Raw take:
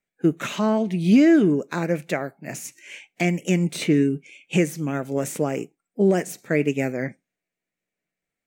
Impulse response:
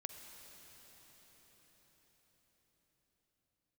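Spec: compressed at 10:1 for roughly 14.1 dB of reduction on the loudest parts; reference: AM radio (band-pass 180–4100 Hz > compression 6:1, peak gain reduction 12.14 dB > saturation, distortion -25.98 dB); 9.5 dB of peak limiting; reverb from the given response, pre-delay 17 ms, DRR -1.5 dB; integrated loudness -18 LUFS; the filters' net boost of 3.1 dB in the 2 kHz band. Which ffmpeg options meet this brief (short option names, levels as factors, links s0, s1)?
-filter_complex "[0:a]equalizer=f=2000:t=o:g=4,acompressor=threshold=0.0501:ratio=10,alimiter=limit=0.0841:level=0:latency=1,asplit=2[s0][s1];[1:a]atrim=start_sample=2205,adelay=17[s2];[s1][s2]afir=irnorm=-1:irlink=0,volume=1.68[s3];[s0][s3]amix=inputs=2:normalize=0,highpass=180,lowpass=4100,acompressor=threshold=0.02:ratio=6,asoftclip=threshold=0.0531,volume=10.6"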